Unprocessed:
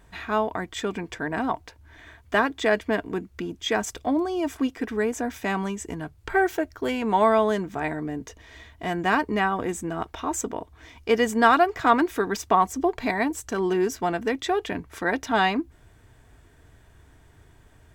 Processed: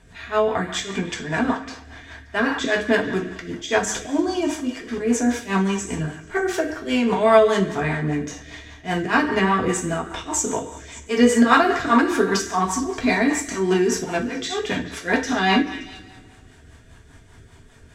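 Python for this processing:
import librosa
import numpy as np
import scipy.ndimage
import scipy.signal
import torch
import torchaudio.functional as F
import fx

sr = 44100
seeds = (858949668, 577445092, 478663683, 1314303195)

p1 = fx.notch(x, sr, hz=550.0, q=12.0)
p2 = fx.auto_swell(p1, sr, attack_ms=117.0)
p3 = p2 + fx.echo_stepped(p2, sr, ms=144, hz=1500.0, octaves=0.7, feedback_pct=70, wet_db=-11.5, dry=0)
p4 = fx.rev_double_slope(p3, sr, seeds[0], early_s=0.46, late_s=2.1, knee_db=-18, drr_db=-2.0)
p5 = fx.rotary(p4, sr, hz=5.0)
p6 = scipy.signal.sosfilt(scipy.signal.butter(2, 7700.0, 'lowpass', fs=sr, output='sos'), p5)
p7 = fx.high_shelf(p6, sr, hz=4000.0, db=8.0)
y = F.gain(torch.from_numpy(p7), 4.0).numpy()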